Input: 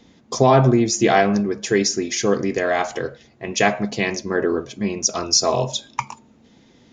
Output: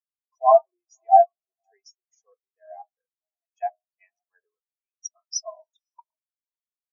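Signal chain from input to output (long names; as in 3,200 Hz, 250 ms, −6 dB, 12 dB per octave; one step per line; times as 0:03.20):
four-pole ladder high-pass 670 Hz, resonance 25%
parametric band 1,500 Hz −4 dB 1.7 octaves
feedback delay with all-pass diffusion 541 ms, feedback 44%, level −14 dB
every bin expanded away from the loudest bin 4 to 1
level +6.5 dB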